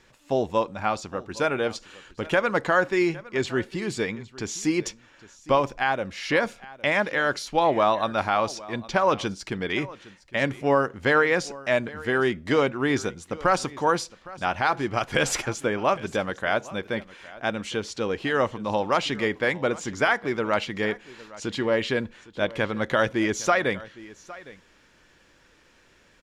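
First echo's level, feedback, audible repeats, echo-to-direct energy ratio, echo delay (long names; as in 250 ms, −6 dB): −19.5 dB, repeats not evenly spaced, 1, −19.5 dB, 810 ms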